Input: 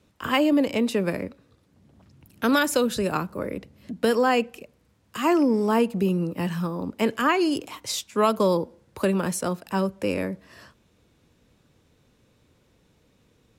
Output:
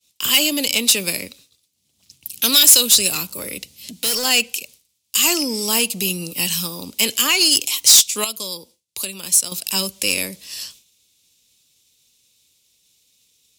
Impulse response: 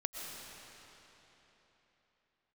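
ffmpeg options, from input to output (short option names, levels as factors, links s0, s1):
-filter_complex "[0:a]asettb=1/sr,asplit=3[s0][s1][s2];[s0]atrim=end=8.244[s3];[s1]atrim=start=8.24:end=9.52,asetpts=PTS-STARTPTS,afade=t=in:d=0.004:c=qsin,afade=t=out:st=1.276:d=0.004:c=qsin,acompressor=threshold=0.00251:ratio=1.5[s4];[s2]atrim=start=9.516[s5];[s3][s4]acrossfade=d=0.004:c1=hsin:c2=qsin[s6];[s6][s5]acrossfade=d=0.004:c1=qsin:c2=hsin,aexciter=amount=9.1:drive=4.7:freq=2400,asoftclip=type=tanh:threshold=0.299,agate=range=0.0224:threshold=0.00708:ratio=3:detection=peak,asettb=1/sr,asplit=3[s7][s8][s9];[s7]atrim=end=3.104[s10];[s8]atrim=start=3.1:end=4.25,asetpts=PTS-STARTPTS,afade=t=in:d=0.004:c=qsin,afade=t=out:st=1.146:d=0.004:c=qsin,asoftclip=type=hard:threshold=0.0891[s11];[s9]atrim=start=4.246[s12];[s10][s11]acrossfade=d=0.004:c1=hsin:c2=qsin[s13];[s13][s12]acrossfade=d=0.004:c1=qsin:c2=hsin,highshelf=f=2400:g=10.5,volume=0.631"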